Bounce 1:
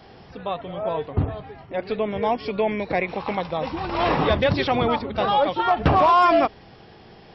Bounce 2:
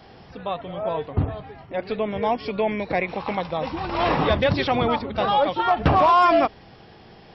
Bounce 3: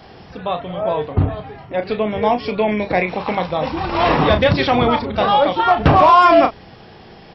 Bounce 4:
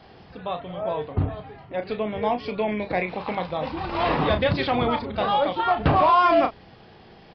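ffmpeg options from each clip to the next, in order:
ffmpeg -i in.wav -af "equalizer=frequency=400:width=4.3:gain=-2" out.wav
ffmpeg -i in.wav -filter_complex "[0:a]asplit=2[link_01][link_02];[link_02]adelay=33,volume=-8.5dB[link_03];[link_01][link_03]amix=inputs=2:normalize=0,volume=5.5dB" out.wav
ffmpeg -i in.wav -af "aresample=11025,aresample=44100,volume=-7.5dB" out.wav

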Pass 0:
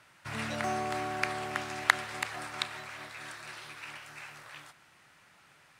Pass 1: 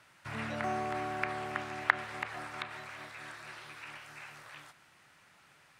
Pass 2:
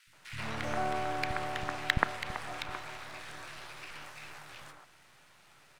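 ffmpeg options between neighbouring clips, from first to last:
ffmpeg -i in.wav -filter_complex "[0:a]acrossover=split=2900[link_01][link_02];[link_02]acompressor=threshold=-53dB:ratio=4:attack=1:release=60[link_03];[link_01][link_03]amix=inputs=2:normalize=0,volume=-1.5dB" out.wav
ffmpeg -i in.wav -filter_complex "[0:a]aeval=exprs='if(lt(val(0),0),0.251*val(0),val(0))':channel_layout=same,acrossover=split=240|1700[link_01][link_02][link_03];[link_01]adelay=70[link_04];[link_02]adelay=130[link_05];[link_04][link_05][link_03]amix=inputs=3:normalize=0,volume=6dB" out.wav

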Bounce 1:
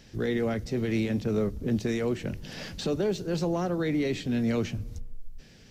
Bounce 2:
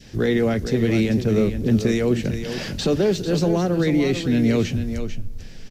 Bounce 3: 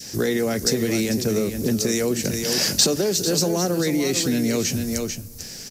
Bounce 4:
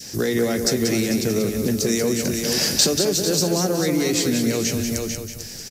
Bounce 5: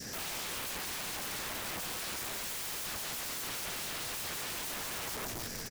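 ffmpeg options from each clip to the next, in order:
ffmpeg -i in.wav -filter_complex "[0:a]adynamicequalizer=threshold=0.00501:dfrequency=1000:dqfactor=1:tfrequency=1000:tqfactor=1:attack=5:release=100:ratio=0.375:range=3:mode=cutabove:tftype=bell,asplit=2[link_01][link_02];[link_02]aecho=0:1:445:0.335[link_03];[link_01][link_03]amix=inputs=2:normalize=0,volume=8.5dB" out.wav
ffmpeg -i in.wav -af "highpass=frequency=220:poles=1,acompressor=threshold=-24dB:ratio=4,aexciter=amount=5.9:drive=4.7:freq=4700,volume=4.5dB" out.wav
ffmpeg -i in.wav -af "aecho=1:1:186|372|558|744:0.473|0.151|0.0485|0.0155" out.wav
ffmpeg -i in.wav -af "acompressor=threshold=-29dB:ratio=2,highshelf=frequency=2300:width_type=q:width=1.5:gain=-7.5,aeval=exprs='(mod(50.1*val(0)+1,2)-1)/50.1':channel_layout=same" out.wav

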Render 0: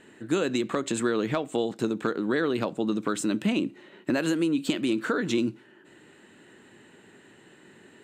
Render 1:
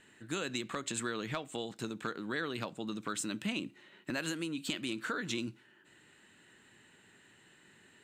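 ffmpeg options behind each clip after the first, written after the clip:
ffmpeg -i in.wav -af "equalizer=frequency=380:width=0.45:gain=-11,volume=-3dB" out.wav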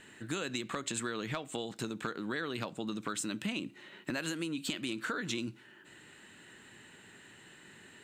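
ffmpeg -i in.wav -af "acompressor=threshold=-44dB:ratio=2,volume=6.5dB" out.wav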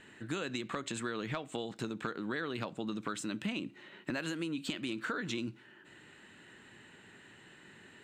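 ffmpeg -i in.wav -af "lowpass=frequency=3800:poles=1" out.wav

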